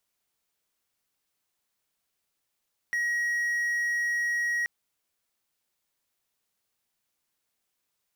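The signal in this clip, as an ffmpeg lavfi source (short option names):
-f lavfi -i "aevalsrc='0.0708*(1-4*abs(mod(1900*t+0.25,1)-0.5))':d=1.73:s=44100"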